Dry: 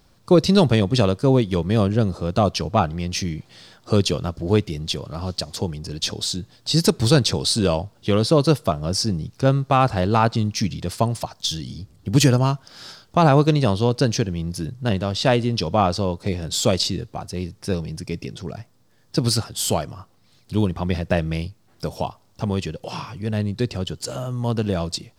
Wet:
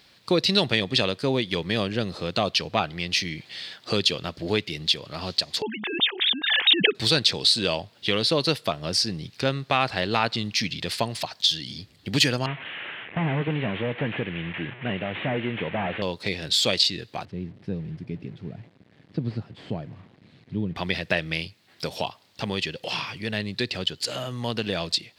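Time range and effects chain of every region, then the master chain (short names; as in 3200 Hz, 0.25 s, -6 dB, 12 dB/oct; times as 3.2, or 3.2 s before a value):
5.62–6.95 sine-wave speech + bell 580 Hz -14 dB 0.28 oct + backwards sustainer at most 40 dB/s
12.46–16.02 delta modulation 16 kbps, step -34.5 dBFS + low-pass opened by the level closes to 2100 Hz, open at -14.5 dBFS + HPF 82 Hz
17.25–20.76 delta modulation 64 kbps, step -35 dBFS + band-pass 160 Hz, Q 0.93 + low shelf 140 Hz +6 dB
whole clip: HPF 250 Hz 6 dB/oct; band shelf 2800 Hz +11 dB; compressor 1.5:1, threshold -28 dBFS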